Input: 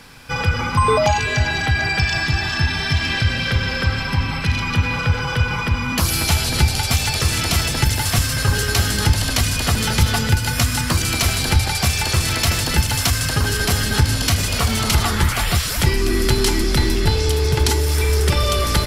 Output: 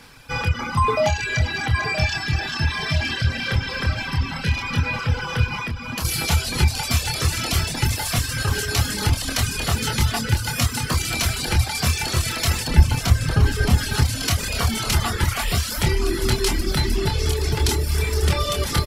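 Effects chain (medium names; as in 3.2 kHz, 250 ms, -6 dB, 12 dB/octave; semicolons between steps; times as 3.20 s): doubling 26 ms -4.5 dB; feedback delay 971 ms, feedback 57%, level -11 dB; reverb removal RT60 0.98 s; 5.57–6.05 s: compression 4:1, threshold -22 dBFS, peak gain reduction 8 dB; 12.68–13.78 s: tilt EQ -2 dB/octave; trim -3.5 dB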